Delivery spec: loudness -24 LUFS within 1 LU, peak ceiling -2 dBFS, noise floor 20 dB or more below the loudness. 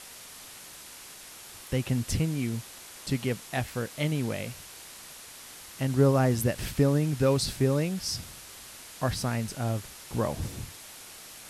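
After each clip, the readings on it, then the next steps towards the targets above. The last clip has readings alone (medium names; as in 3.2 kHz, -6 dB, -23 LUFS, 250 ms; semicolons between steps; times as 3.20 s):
noise floor -47 dBFS; noise floor target -49 dBFS; loudness -29.0 LUFS; peak level -9.0 dBFS; loudness target -24.0 LUFS
-> noise print and reduce 6 dB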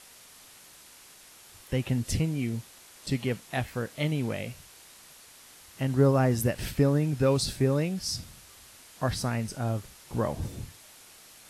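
noise floor -53 dBFS; loudness -29.0 LUFS; peak level -9.0 dBFS; loudness target -24.0 LUFS
-> trim +5 dB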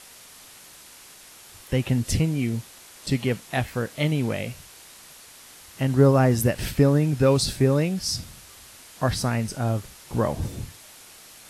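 loudness -24.0 LUFS; peak level -4.0 dBFS; noise floor -48 dBFS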